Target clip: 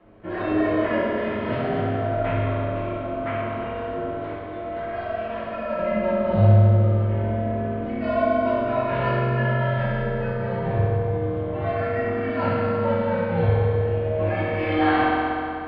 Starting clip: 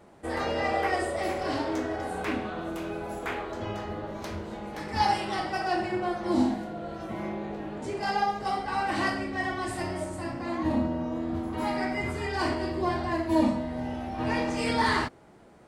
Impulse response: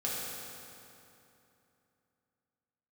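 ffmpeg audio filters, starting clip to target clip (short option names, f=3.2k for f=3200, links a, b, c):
-filter_complex "[0:a]asettb=1/sr,asplit=3[a][b][c];[a]atrim=end=4.084[d];[b]atrim=start=4.08:end=5.79,asetpts=PTS-STARTPTS,afade=t=in:d=0.004:c=qsin,afade=t=out:st=1.706:d=0.004:c=qsin,acrossover=split=560|2500[e][f][g];[e]acompressor=threshold=-42dB:ratio=4[h];[f]acompressor=threshold=-34dB:ratio=4[i];[g]acompressor=threshold=-52dB:ratio=4[j];[h][i][j]amix=inputs=3:normalize=0[k];[c]atrim=start=5.786[l];[d][k]acrossfade=d=0.004:c1=hsin:c2=qsin[m];[m][l]acrossfade=d=0.004:c1=qsin:c2=hsin[n];[1:a]atrim=start_sample=2205[o];[n][o]afir=irnorm=-1:irlink=0,highpass=f=200:t=q:w=0.5412,highpass=f=200:t=q:w=1.307,lowpass=f=3.3k:t=q:w=0.5176,lowpass=f=3.3k:t=q:w=0.7071,lowpass=f=3.3k:t=q:w=1.932,afreqshift=-150"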